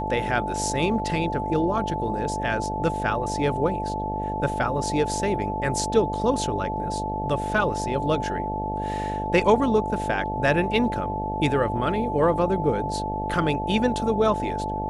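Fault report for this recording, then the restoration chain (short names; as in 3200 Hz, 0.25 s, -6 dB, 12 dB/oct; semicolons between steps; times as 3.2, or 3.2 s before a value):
buzz 50 Hz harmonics 15 -31 dBFS
tone 870 Hz -28 dBFS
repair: de-hum 50 Hz, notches 15; notch 870 Hz, Q 30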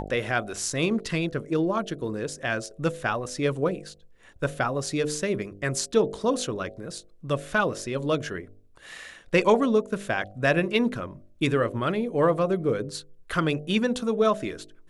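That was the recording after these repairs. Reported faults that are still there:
none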